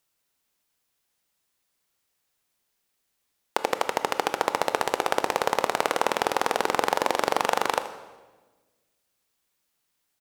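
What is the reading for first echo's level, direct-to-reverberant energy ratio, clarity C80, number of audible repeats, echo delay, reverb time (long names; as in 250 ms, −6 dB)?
−16.0 dB, 9.5 dB, 14.0 dB, 1, 79 ms, 1.3 s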